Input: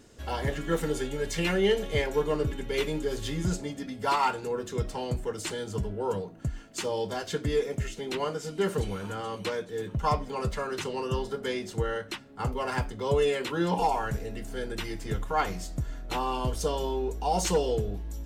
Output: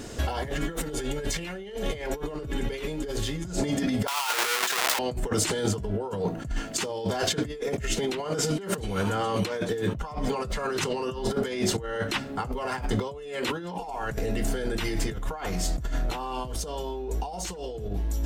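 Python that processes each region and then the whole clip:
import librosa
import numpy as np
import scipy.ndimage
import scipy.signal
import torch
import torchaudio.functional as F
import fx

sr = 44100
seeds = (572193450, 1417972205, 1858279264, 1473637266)

y = fx.chain(x, sr, fx.halfwave_hold(),
    fx.highpass(hz=1200.0, slope=12),
    fx.over_compress(threshold_db=-38.0, ratio=-1.0), at=(4.07, 4.99))
y = fx.over_compress(y, sr, threshold_db=-39.0, ratio=-1.0)
y = fx.peak_eq(y, sr, hz=700.0, db=3.0, octaves=0.28)
y = y * librosa.db_to_amplitude(8.5)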